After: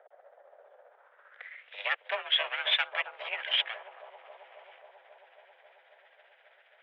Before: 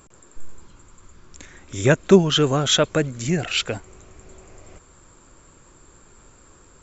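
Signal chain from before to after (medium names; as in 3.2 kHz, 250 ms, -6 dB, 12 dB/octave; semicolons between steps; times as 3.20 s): comb filter that takes the minimum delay 0.61 ms; 2.15–3.69 s: dynamic bell 2.5 kHz, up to +5 dB, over -35 dBFS, Q 1.5; in parallel at +2 dB: compression, threshold -26 dBFS, peak gain reduction 16.5 dB; on the sum: tremolo 15 Hz, depth 46%; mistuned SSB +220 Hz 280–3100 Hz; saturation -6 dBFS, distortion -20 dB; bucket-brigade echo 270 ms, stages 2048, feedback 82%, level -7.5 dB; band-pass sweep 680 Hz -> 2.6 kHz, 0.84–1.66 s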